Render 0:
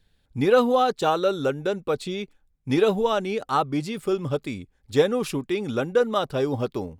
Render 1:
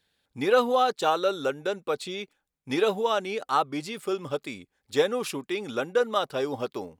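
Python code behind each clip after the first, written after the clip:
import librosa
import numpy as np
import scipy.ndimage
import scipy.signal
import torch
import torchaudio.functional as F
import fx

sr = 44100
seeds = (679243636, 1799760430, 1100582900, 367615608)

y = fx.highpass(x, sr, hz=530.0, slope=6)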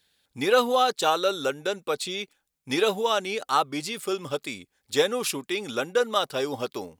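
y = fx.high_shelf(x, sr, hz=2800.0, db=9.0)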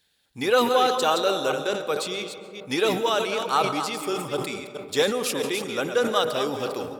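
y = fx.reverse_delay(x, sr, ms=217, wet_db=-8)
y = fx.rev_freeverb(y, sr, rt60_s=2.7, hf_ratio=0.25, predelay_ms=95, drr_db=11.5)
y = fx.sustainer(y, sr, db_per_s=73.0)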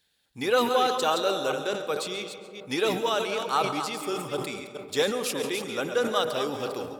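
y = x + 10.0 ** (-16.5 / 20.0) * np.pad(x, (int(137 * sr / 1000.0), 0))[:len(x)]
y = F.gain(torch.from_numpy(y), -3.0).numpy()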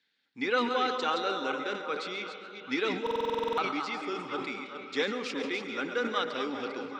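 y = fx.cabinet(x, sr, low_hz=130.0, low_slope=24, high_hz=5400.0, hz=(140.0, 270.0, 640.0, 1400.0, 2100.0), db=(-9, 7, -8, 5, 9))
y = fx.echo_stepped(y, sr, ms=392, hz=680.0, octaves=0.7, feedback_pct=70, wet_db=-8.5)
y = fx.buffer_glitch(y, sr, at_s=(3.02,), block=2048, repeats=11)
y = F.gain(torch.from_numpy(y), -5.5).numpy()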